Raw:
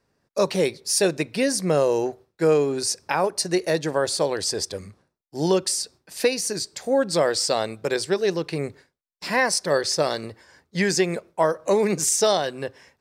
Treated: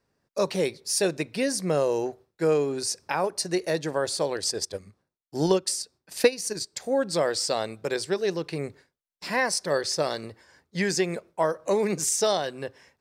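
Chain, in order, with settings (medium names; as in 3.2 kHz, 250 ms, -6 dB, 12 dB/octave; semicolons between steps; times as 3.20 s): 4.35–6.80 s: transient shaper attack +6 dB, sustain -7 dB; trim -4 dB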